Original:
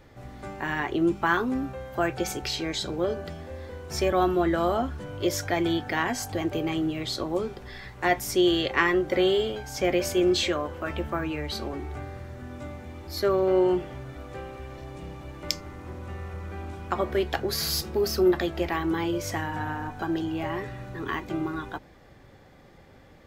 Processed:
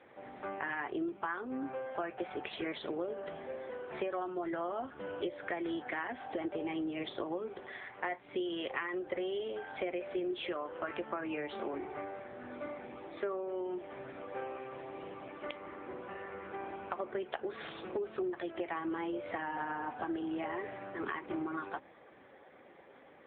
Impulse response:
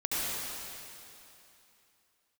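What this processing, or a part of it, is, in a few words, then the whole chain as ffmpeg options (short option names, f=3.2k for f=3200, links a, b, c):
voicemail: -af "highpass=330,lowpass=3.1k,acompressor=threshold=-34dB:ratio=10,volume=1.5dB" -ar 8000 -c:a libopencore_amrnb -b:a 6700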